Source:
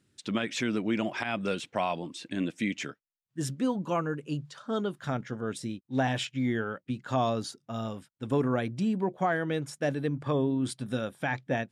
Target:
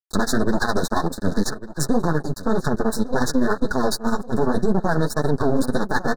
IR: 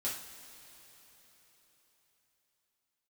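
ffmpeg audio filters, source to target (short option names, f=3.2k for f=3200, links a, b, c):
-af "highpass=f=87:w=0.5412,highpass=f=87:w=1.3066,equalizer=f=620:w=7.5:g=-8.5,aecho=1:1:4.7:0.46,aeval=exprs='max(val(0),0)':c=same,tremolo=f=7.5:d=0.72,atempo=1.9,flanger=delay=5.1:depth=8.3:regen=-12:speed=1.9:shape=triangular,aeval=exprs='sgn(val(0))*max(abs(val(0))-0.00141,0)':c=same,asuperstop=centerf=2600:order=20:qfactor=1.3,aecho=1:1:1147|2294|3441|4588:0.0944|0.0453|0.0218|0.0104,alimiter=level_in=31.5dB:limit=-1dB:release=50:level=0:latency=1,volume=-7dB"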